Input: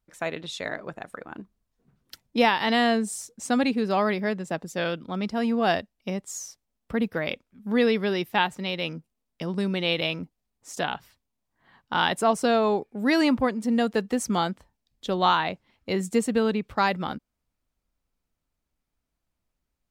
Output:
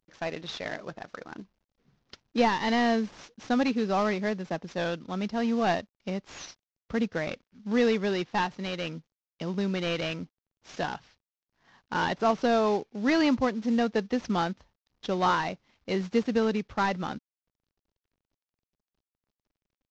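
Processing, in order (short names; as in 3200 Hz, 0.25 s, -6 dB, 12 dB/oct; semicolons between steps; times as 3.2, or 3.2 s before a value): CVSD 32 kbps; gain -2 dB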